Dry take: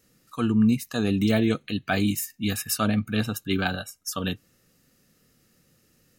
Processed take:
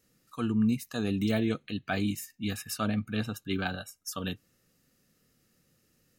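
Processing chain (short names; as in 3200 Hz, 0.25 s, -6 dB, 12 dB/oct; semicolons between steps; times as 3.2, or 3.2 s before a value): 1.43–3.81 high shelf 8000 Hz -7 dB; gain -6 dB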